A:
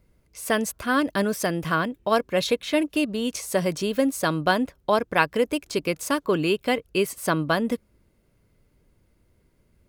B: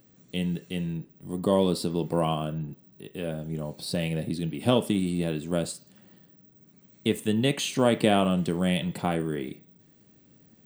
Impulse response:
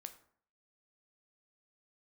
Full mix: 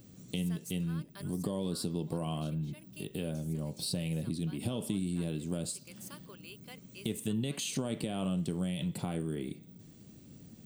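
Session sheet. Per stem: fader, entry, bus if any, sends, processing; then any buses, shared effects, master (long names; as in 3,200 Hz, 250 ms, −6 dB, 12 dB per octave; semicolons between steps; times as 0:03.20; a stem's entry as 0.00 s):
−16.0 dB, 0.00 s, no send, spectral tilt +4 dB per octave; automatic ducking −11 dB, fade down 1.95 s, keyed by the second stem
−2.5 dB, 0.00 s, no send, parametric band 10,000 Hz +11 dB 2.9 octaves; brickwall limiter −14 dBFS, peak gain reduction 10.5 dB; low-shelf EQ 340 Hz +12 dB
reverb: not used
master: parametric band 1,800 Hz −4 dB 0.4 octaves; downward compressor 2.5 to 1, threshold −37 dBFS, peak gain reduction 14 dB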